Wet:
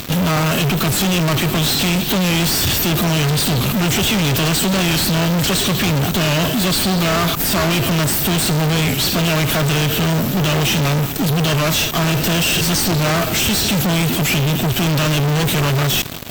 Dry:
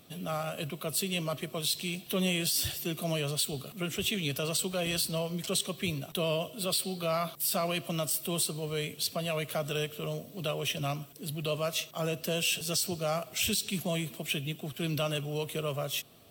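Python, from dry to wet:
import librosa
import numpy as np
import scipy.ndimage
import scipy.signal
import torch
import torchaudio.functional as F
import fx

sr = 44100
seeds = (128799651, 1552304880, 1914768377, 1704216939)

p1 = fx.sample_hold(x, sr, seeds[0], rate_hz=1100.0, jitter_pct=0)
p2 = x + F.gain(torch.from_numpy(p1), -5.0).numpy()
p3 = fx.peak_eq(p2, sr, hz=510.0, db=-9.5, octaves=0.57)
p4 = fx.fuzz(p3, sr, gain_db=54.0, gate_db=-54.0)
p5 = fx.peak_eq(p4, sr, hz=10000.0, db=-9.5, octaves=0.27)
p6 = fx.record_warp(p5, sr, rpm=45.0, depth_cents=100.0)
y = F.gain(torch.from_numpy(p6), -2.0).numpy()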